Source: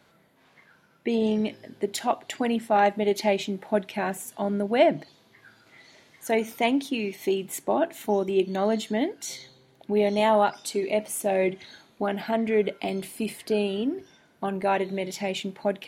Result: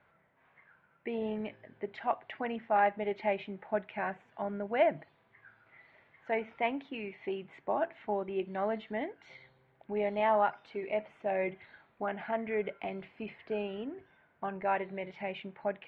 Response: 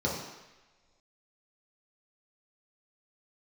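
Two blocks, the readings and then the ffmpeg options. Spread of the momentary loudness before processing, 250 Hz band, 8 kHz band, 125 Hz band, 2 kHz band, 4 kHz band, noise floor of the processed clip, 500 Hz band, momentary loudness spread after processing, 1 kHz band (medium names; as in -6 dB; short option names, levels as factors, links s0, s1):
10 LU, -12.5 dB, under -40 dB, -11.5 dB, -5.5 dB, -15.5 dB, -69 dBFS, -8.5 dB, 13 LU, -5.5 dB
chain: -af "lowpass=f=2300:w=0.5412,lowpass=f=2300:w=1.3066,equalizer=f=270:w=0.77:g=-10.5,volume=0.668"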